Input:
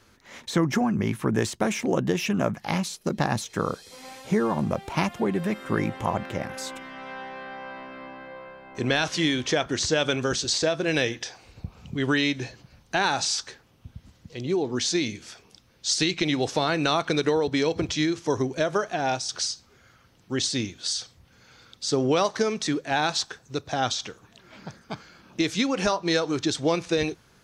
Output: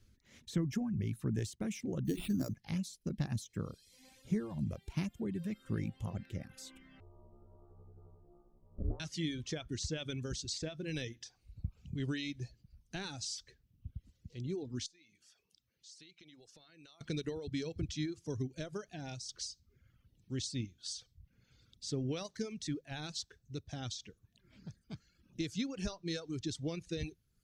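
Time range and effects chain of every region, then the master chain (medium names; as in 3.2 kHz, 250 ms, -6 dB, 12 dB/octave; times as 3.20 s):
2.05–2.54 s: sample-rate reducer 6.2 kHz + peaking EQ 290 Hz +10 dB 0.51 oct + hum notches 60/120/180/240/300/360/420/480/540 Hz
7.00–9.00 s: steep low-pass 1.1 kHz 72 dB/octave + ring modulator 170 Hz
14.86–17.01 s: high-pass 630 Hz 6 dB/octave + compression 2.5:1, threshold -47 dBFS
whole clip: reverb removal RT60 0.88 s; amplifier tone stack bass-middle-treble 10-0-1; trim +7.5 dB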